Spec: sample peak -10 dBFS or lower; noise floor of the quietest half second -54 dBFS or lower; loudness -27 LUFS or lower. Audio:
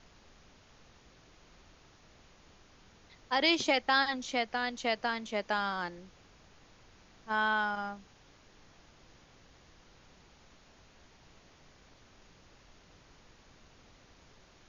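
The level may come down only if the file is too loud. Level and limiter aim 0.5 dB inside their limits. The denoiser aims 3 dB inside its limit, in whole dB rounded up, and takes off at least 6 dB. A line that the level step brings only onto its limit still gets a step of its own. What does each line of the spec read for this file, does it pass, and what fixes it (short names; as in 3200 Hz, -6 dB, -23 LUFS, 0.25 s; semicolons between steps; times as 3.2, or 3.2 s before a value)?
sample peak -13.5 dBFS: OK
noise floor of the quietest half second -60 dBFS: OK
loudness -31.0 LUFS: OK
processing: none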